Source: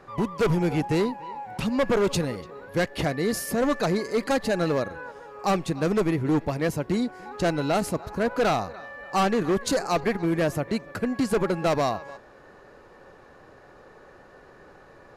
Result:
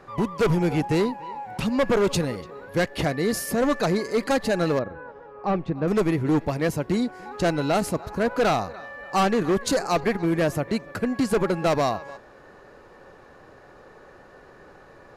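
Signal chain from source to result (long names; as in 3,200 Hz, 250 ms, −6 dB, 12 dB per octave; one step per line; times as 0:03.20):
0:04.79–0:05.88: head-to-tape spacing loss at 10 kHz 37 dB
level +1.5 dB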